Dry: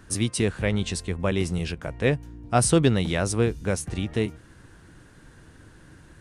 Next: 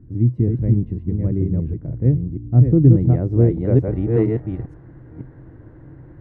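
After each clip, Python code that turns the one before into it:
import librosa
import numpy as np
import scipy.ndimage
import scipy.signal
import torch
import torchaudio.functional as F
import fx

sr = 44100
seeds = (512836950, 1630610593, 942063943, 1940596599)

y = fx.reverse_delay(x, sr, ms=474, wet_db=-4)
y = fx.graphic_eq_31(y, sr, hz=(125, 200, 315, 2000), db=(10, -3, 6, 10))
y = fx.filter_sweep_lowpass(y, sr, from_hz=240.0, to_hz=710.0, start_s=2.73, end_s=4.22, q=0.99)
y = F.gain(torch.from_numpy(y), 4.0).numpy()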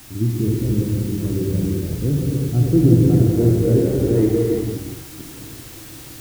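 y = fx.small_body(x, sr, hz=(340.0, 1400.0), ring_ms=30, db=7)
y = fx.dmg_noise_colour(y, sr, seeds[0], colour='white', level_db=-39.0)
y = fx.rev_gated(y, sr, seeds[1], gate_ms=430, shape='flat', drr_db=-3.0)
y = F.gain(torch.from_numpy(y), -5.5).numpy()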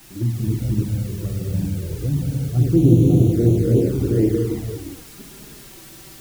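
y = fx.env_flanger(x, sr, rest_ms=6.4, full_db=-10.5)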